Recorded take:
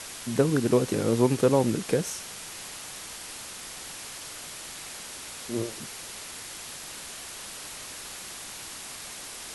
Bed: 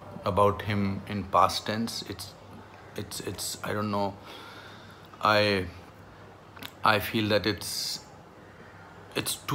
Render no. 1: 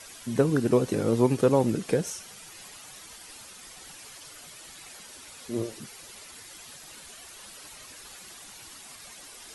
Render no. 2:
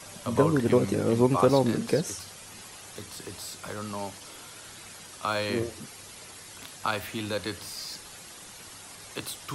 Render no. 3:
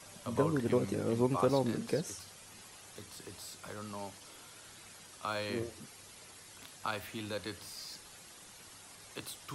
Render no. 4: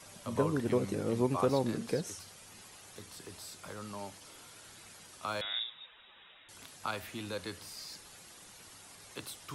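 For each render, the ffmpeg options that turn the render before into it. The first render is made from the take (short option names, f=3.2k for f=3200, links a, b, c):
-af "afftdn=nr=10:nf=-41"
-filter_complex "[1:a]volume=-6.5dB[a];[0:a][a]amix=inputs=2:normalize=0"
-af "volume=-8dB"
-filter_complex "[0:a]asettb=1/sr,asplit=3[a][b][c];[a]atrim=end=5.414[d];[b]atrim=start=5.41:end=6.49,asetpts=PTS-STARTPTS,afade=t=in:d=0.004:c=qsin,afade=t=out:st=1.076:d=0.004:c=qsin,lowpass=f=3.3k:t=q:w=0.5098,lowpass=f=3.3k:t=q:w=0.6013,lowpass=f=3.3k:t=q:w=0.9,lowpass=f=3.3k:t=q:w=2.563,afreqshift=-3900[e];[c]atrim=start=6.486[f];[d][e]acrossfade=d=0.004:c1=hsin:c2=qsin[g];[g][f]acrossfade=d=0.004:c1=qsin:c2=hsin"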